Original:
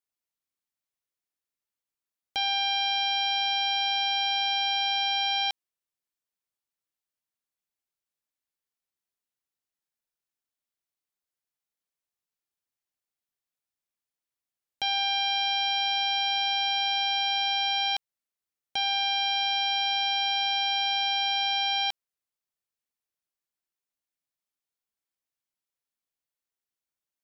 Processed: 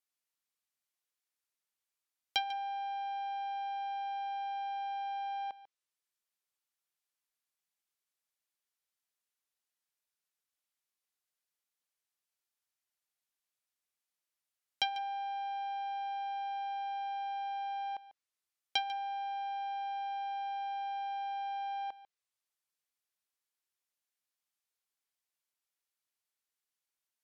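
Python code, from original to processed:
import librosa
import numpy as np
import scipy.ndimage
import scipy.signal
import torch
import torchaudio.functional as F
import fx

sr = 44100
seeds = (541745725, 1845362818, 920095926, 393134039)

y = fx.env_lowpass_down(x, sr, base_hz=650.0, full_db=-23.5)
y = fx.low_shelf(y, sr, hz=460.0, db=-11.5)
y = y + 10.0 ** (-16.0 / 20.0) * np.pad(y, (int(145 * sr / 1000.0), 0))[:len(y)]
y = F.gain(torch.from_numpy(y), 1.5).numpy()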